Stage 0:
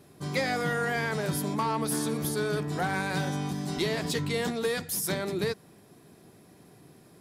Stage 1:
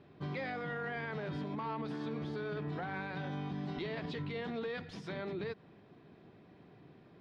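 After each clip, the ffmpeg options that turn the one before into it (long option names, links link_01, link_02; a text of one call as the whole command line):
ffmpeg -i in.wav -af "lowpass=frequency=3500:width=0.5412,lowpass=frequency=3500:width=1.3066,alimiter=level_in=4dB:limit=-24dB:level=0:latency=1:release=85,volume=-4dB,volume=-3.5dB" out.wav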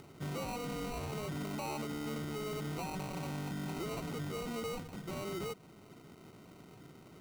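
ffmpeg -i in.wav -af "acrusher=samples=26:mix=1:aa=0.000001,acompressor=mode=upward:threshold=-52dB:ratio=2.5,asoftclip=type=tanh:threshold=-35dB,volume=2dB" out.wav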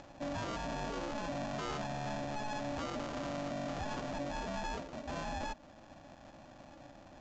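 ffmpeg -i in.wav -af "aeval=exprs='val(0)*sin(2*PI*430*n/s)':channel_layout=same,aresample=16000,aresample=44100,volume=3.5dB" out.wav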